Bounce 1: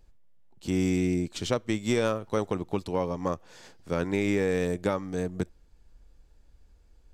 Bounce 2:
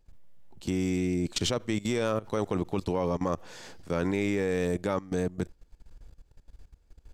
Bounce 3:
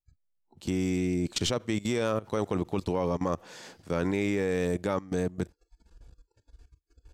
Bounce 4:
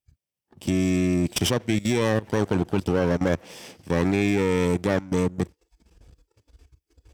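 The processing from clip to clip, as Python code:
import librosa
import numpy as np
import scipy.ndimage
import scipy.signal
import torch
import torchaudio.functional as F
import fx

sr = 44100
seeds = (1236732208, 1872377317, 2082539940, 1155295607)

y1 = fx.level_steps(x, sr, step_db=18)
y1 = y1 * librosa.db_to_amplitude(8.5)
y2 = fx.noise_reduce_blind(y1, sr, reduce_db=29)
y3 = fx.lower_of_two(y2, sr, delay_ms=0.36)
y3 = scipy.signal.sosfilt(scipy.signal.butter(2, 64.0, 'highpass', fs=sr, output='sos'), y3)
y3 = y3 * librosa.db_to_amplitude(6.0)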